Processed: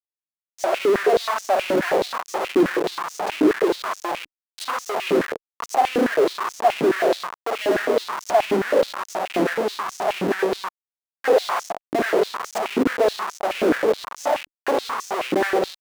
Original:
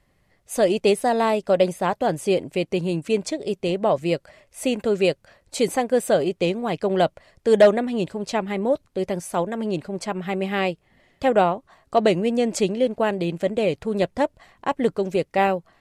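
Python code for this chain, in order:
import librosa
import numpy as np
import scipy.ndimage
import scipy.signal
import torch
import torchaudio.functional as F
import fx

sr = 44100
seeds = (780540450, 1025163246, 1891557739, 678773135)

y = fx.recorder_agc(x, sr, target_db=-15.5, rise_db_per_s=5.5, max_gain_db=30)
y = fx.step_gate(y, sr, bpm=124, pattern='xxx..x.x.xx.xx', floor_db=-12.0, edge_ms=4.5)
y = fx.room_shoebox(y, sr, seeds[0], volume_m3=2600.0, walls='furnished', distance_m=3.2)
y = fx.schmitt(y, sr, flips_db=-25.5)
y = fx.high_shelf(y, sr, hz=2100.0, db=-10.5)
y = fx.filter_held_highpass(y, sr, hz=9.4, low_hz=300.0, high_hz=6100.0)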